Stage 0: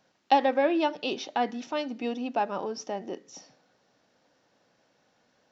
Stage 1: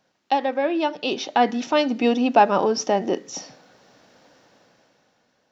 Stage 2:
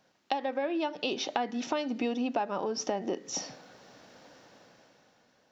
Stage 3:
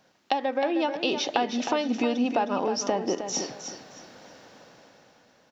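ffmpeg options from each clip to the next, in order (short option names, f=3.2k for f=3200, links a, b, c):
-af "dynaudnorm=f=200:g=11:m=14dB"
-af "acompressor=threshold=-28dB:ratio=8"
-af "aecho=1:1:312|624|936:0.376|0.094|0.0235,volume=5dB"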